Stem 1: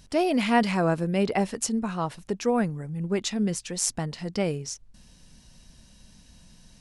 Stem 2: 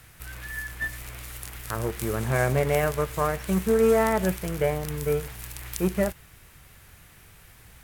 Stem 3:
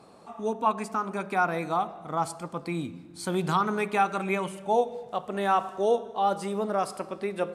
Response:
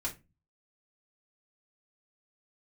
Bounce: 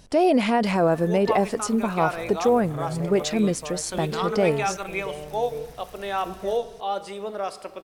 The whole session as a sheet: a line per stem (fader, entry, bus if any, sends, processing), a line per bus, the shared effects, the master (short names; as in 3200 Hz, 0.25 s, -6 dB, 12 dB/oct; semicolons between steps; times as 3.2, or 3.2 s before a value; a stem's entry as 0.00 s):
+1.0 dB, 0.00 s, no send, limiter -17.5 dBFS, peak gain reduction 9 dB
-13.0 dB, 0.45 s, no send, limiter -15.5 dBFS, peak gain reduction 8 dB; soft clip -19 dBFS, distortion -17 dB
-9.0 dB, 0.65 s, no send, weighting filter D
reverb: off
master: bell 560 Hz +8.5 dB 1.9 oct